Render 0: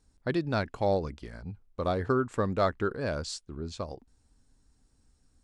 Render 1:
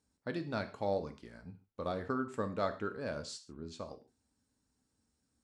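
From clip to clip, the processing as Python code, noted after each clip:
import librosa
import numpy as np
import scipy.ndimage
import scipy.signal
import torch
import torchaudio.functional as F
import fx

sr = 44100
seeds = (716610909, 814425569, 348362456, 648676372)

y = scipy.signal.sosfilt(scipy.signal.butter(2, 110.0, 'highpass', fs=sr, output='sos'), x)
y = fx.rev_gated(y, sr, seeds[0], gate_ms=160, shape='falling', drr_db=7.5)
y = F.gain(torch.from_numpy(y), -8.0).numpy()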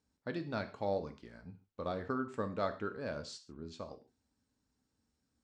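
y = scipy.signal.sosfilt(scipy.signal.butter(2, 6500.0, 'lowpass', fs=sr, output='sos'), x)
y = F.gain(torch.from_numpy(y), -1.0).numpy()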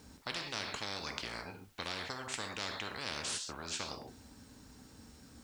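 y = fx.spectral_comp(x, sr, ratio=10.0)
y = F.gain(torch.from_numpy(y), 2.5).numpy()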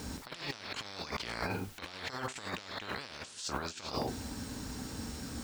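y = fx.over_compress(x, sr, threshold_db=-47.0, ratio=-0.5)
y = F.gain(torch.from_numpy(y), 8.5).numpy()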